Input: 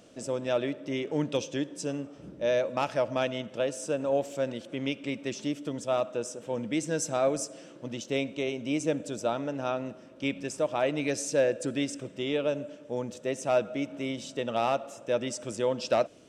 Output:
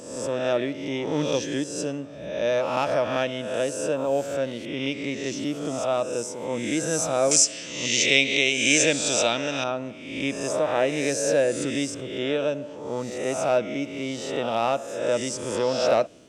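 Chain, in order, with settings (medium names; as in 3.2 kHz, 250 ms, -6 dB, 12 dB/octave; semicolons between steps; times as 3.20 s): reverse spectral sustain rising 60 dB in 0.93 s; 7.31–9.64 s: high-order bell 3.9 kHz +14 dB 2.5 oct; trim +2 dB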